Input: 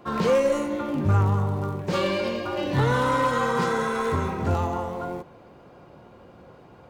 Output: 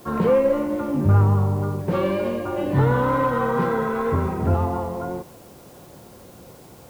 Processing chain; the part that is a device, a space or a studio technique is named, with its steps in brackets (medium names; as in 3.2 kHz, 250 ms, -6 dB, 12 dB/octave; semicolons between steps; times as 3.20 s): cassette deck with a dirty head (tape spacing loss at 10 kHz 42 dB; wow and flutter 21 cents; white noise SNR 31 dB); trim +5 dB